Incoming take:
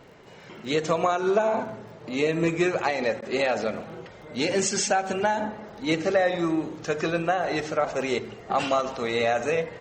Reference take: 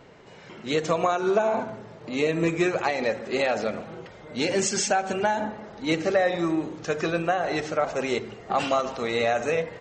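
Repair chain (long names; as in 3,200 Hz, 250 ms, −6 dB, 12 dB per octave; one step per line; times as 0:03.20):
click removal
repair the gap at 0:03.21, 11 ms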